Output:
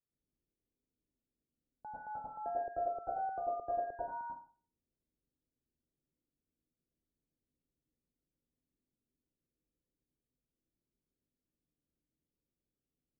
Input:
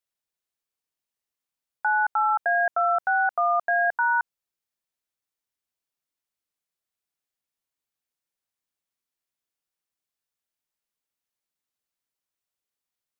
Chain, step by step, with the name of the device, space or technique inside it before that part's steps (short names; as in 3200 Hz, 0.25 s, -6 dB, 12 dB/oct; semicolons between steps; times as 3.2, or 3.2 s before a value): next room (LPF 400 Hz 24 dB/oct; reverb RT60 0.45 s, pre-delay 89 ms, DRR -7 dB); gain +5 dB